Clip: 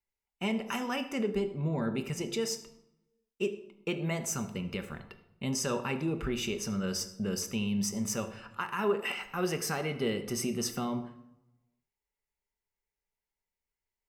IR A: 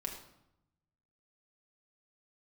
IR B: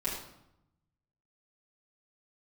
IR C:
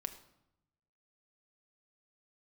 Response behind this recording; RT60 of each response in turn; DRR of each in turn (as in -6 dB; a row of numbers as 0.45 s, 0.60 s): C; 0.80 s, 0.80 s, 0.85 s; -0.5 dB, -10.0 dB, 7.0 dB